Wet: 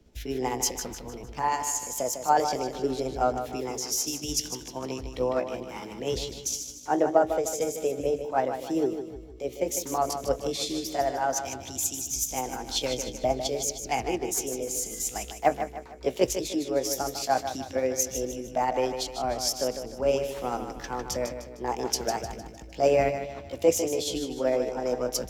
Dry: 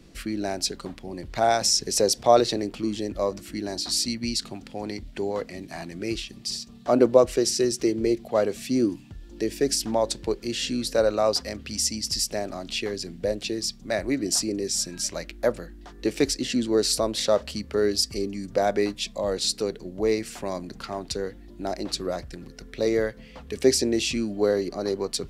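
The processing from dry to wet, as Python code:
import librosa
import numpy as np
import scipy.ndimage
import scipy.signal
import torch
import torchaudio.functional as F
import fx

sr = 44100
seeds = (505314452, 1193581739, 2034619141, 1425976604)

p1 = fx.pitch_heads(x, sr, semitones=4.0)
p2 = fx.rider(p1, sr, range_db=4, speed_s=0.5)
p3 = fx.peak_eq(p2, sr, hz=9400.0, db=-8.0, octaves=0.32)
p4 = p3 + fx.echo_feedback(p3, sr, ms=153, feedback_pct=53, wet_db=-7.5, dry=0)
p5 = fx.band_widen(p4, sr, depth_pct=40)
y = F.gain(torch.from_numpy(p5), -2.5).numpy()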